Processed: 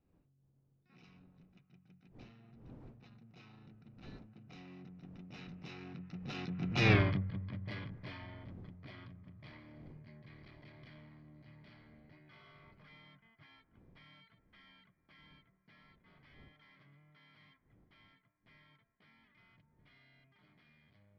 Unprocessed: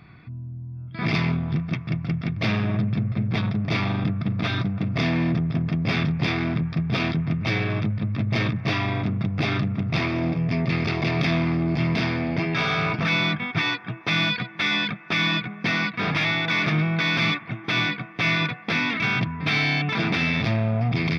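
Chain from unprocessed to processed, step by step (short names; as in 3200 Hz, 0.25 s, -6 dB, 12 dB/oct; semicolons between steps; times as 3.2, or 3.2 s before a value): wind noise 240 Hz -30 dBFS; Doppler pass-by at 6.93, 32 m/s, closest 2.3 m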